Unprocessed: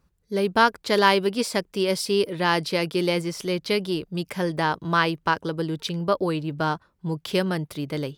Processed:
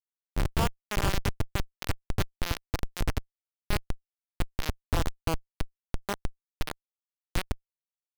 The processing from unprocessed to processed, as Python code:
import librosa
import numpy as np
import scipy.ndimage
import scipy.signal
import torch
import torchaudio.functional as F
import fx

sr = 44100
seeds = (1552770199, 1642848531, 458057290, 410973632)

y = fx.spec_flatten(x, sr, power=0.44)
y = fx.schmitt(y, sr, flips_db=-12.0)
y = F.gain(torch.from_numpy(y), 1.5).numpy()